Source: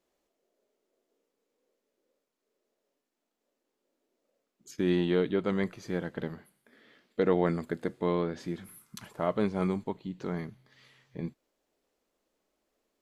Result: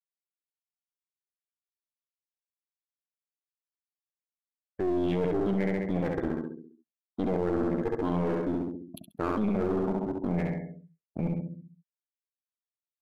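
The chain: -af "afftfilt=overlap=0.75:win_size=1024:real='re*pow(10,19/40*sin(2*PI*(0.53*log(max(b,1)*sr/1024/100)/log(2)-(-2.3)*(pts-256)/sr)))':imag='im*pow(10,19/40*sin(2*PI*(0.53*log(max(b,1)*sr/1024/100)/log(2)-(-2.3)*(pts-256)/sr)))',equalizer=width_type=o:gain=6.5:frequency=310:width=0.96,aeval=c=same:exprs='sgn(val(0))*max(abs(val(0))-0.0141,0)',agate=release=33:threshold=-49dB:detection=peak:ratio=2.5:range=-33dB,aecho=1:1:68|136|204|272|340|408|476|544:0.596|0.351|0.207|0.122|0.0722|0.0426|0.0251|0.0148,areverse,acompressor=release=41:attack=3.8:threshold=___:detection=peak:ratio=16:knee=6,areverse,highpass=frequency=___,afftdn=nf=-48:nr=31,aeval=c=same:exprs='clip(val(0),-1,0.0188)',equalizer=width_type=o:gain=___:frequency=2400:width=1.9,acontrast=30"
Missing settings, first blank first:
-28dB, 45, -4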